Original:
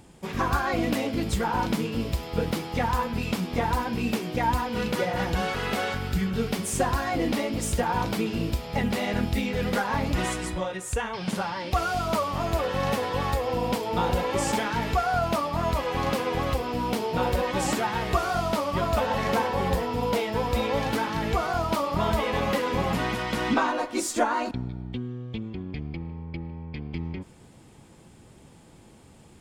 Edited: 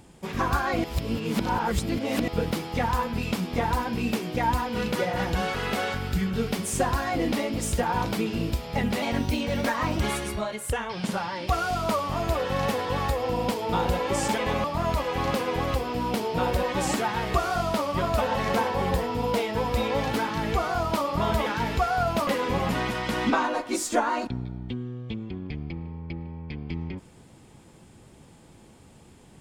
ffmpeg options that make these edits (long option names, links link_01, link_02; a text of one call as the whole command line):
ffmpeg -i in.wav -filter_complex "[0:a]asplit=9[link_01][link_02][link_03][link_04][link_05][link_06][link_07][link_08][link_09];[link_01]atrim=end=0.842[link_10];[link_02]atrim=start=0.838:end=2.282,asetpts=PTS-STARTPTS,areverse[link_11];[link_03]atrim=start=2.278:end=9.024[link_12];[link_04]atrim=start=9.02:end=10.97,asetpts=PTS-STARTPTS,asetrate=50274,aresample=44100,atrim=end_sample=75434,asetpts=PTS-STARTPTS[link_13];[link_05]atrim=start=10.966:end=14.622[link_14];[link_06]atrim=start=22.248:end=22.512[link_15];[link_07]atrim=start=15.428:end=22.252[link_16];[link_08]atrim=start=14.618:end=15.432[link_17];[link_09]atrim=start=22.508[link_18];[link_10][link_11]acrossfade=duration=0.004:curve1=hsin:curve2=hsin[link_19];[link_19][link_12]acrossfade=duration=0.004:curve1=hsin:curve2=hsin[link_20];[link_20][link_13]acrossfade=duration=0.004:curve1=hsin:curve2=hsin[link_21];[link_21][link_14]acrossfade=duration=0.004:curve1=hsin:curve2=hsin[link_22];[link_22][link_15]acrossfade=duration=0.004:curve1=hsin:curve2=hsin[link_23];[link_23][link_16]acrossfade=duration=0.004:curve1=hsin:curve2=hsin[link_24];[link_24][link_17]acrossfade=duration=0.004:curve1=hsin:curve2=hsin[link_25];[link_25][link_18]acrossfade=duration=0.004:curve1=hsin:curve2=hsin" out.wav